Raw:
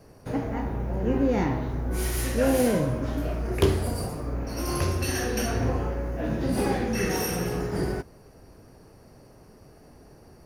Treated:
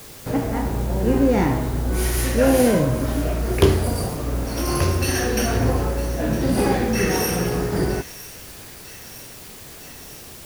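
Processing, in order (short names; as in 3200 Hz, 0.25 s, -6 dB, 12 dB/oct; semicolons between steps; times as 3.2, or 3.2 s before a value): requantised 8-bit, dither triangular; thin delay 0.958 s, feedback 71%, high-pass 2100 Hz, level -14 dB; gain +6 dB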